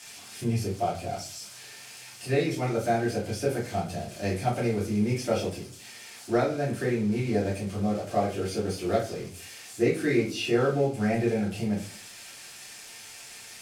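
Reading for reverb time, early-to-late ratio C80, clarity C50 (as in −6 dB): 0.45 s, 13.0 dB, 7.5 dB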